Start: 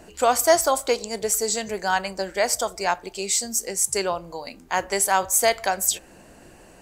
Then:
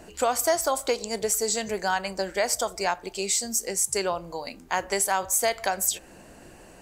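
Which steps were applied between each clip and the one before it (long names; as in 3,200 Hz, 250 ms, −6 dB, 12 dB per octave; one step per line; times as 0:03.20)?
downward compressor 2.5 to 1, threshold −22 dBFS, peak gain reduction 7.5 dB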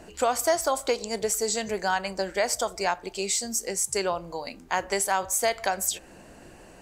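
high-shelf EQ 9,900 Hz −6 dB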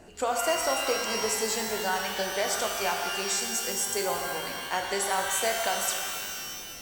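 reverb with rising layers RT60 2.2 s, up +12 semitones, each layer −2 dB, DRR 2.5 dB
level −4.5 dB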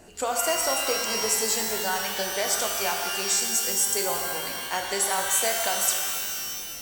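high-shelf EQ 5,100 Hz +8.5 dB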